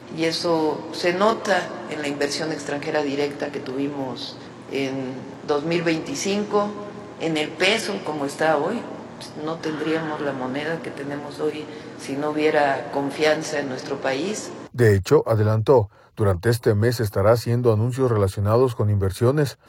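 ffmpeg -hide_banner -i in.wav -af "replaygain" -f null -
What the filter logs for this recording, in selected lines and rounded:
track_gain = +1.9 dB
track_peak = 0.433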